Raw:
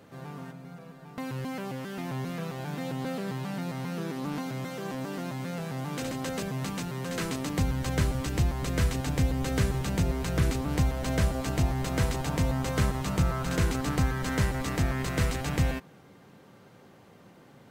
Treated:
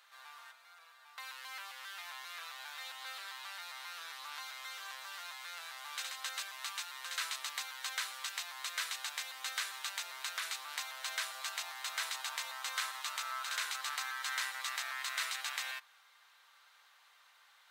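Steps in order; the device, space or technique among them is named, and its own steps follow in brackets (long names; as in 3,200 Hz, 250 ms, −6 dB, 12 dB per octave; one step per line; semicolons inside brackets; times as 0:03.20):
headphones lying on a table (high-pass filter 1,100 Hz 24 dB per octave; parametric band 3,800 Hz +6.5 dB 0.4 octaves)
level −2 dB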